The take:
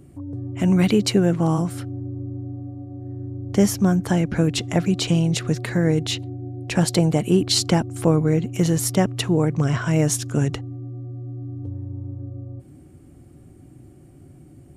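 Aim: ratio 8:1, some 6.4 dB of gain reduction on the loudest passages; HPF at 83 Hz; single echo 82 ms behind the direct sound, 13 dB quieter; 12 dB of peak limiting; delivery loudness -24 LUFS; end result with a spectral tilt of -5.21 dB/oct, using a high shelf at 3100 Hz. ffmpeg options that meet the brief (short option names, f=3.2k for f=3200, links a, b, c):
-af "highpass=83,highshelf=f=3.1k:g=4,acompressor=threshold=-19dB:ratio=8,alimiter=limit=-20.5dB:level=0:latency=1,aecho=1:1:82:0.224,volume=6dB"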